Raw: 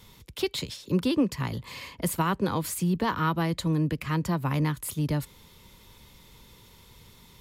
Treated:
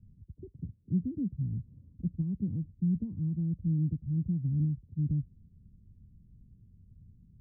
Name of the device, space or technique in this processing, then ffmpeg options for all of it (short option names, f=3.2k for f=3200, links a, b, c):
the neighbour's flat through the wall: -af "lowpass=f=220:w=0.5412,lowpass=f=220:w=1.3066,equalizer=f=90:t=o:w=0.77:g=4.5,volume=-2dB"